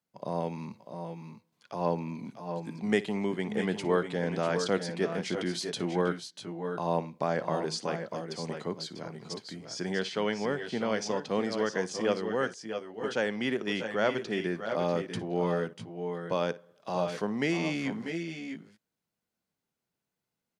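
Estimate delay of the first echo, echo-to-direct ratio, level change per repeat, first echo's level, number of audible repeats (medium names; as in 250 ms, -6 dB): 58 ms, -7.0 dB, no regular repeats, -19.0 dB, 2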